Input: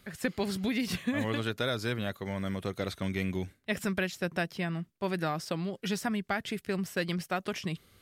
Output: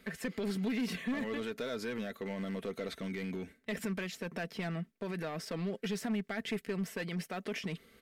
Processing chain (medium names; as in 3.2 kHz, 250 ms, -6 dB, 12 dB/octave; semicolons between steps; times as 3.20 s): peak limiter -29 dBFS, peak gain reduction 10 dB; graphic EQ 250/500/2000 Hz +6/+8/+8 dB; overload inside the chain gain 26.5 dB; peaking EQ 100 Hz -7.5 dB 0.36 oct; comb 4.5 ms, depth 44%; trim -5 dB